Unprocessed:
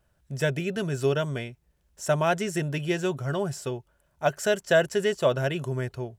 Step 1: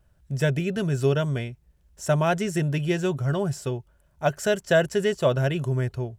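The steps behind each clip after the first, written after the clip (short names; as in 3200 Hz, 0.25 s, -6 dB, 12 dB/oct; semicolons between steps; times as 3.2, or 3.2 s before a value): low shelf 170 Hz +9.5 dB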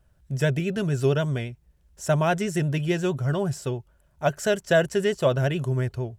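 vibrato 11 Hz 44 cents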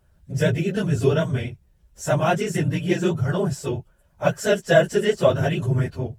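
phase scrambler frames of 50 ms; gain +2.5 dB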